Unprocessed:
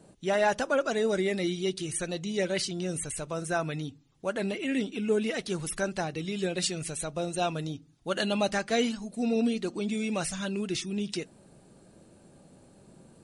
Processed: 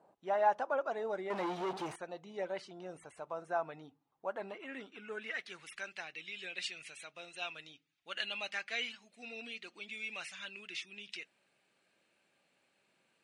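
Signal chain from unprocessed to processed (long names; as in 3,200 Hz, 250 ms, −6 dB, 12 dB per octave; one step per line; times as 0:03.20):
0:01.30–0:01.96: power curve on the samples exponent 0.35
band-pass filter sweep 870 Hz → 2,400 Hz, 0:04.32–0:05.76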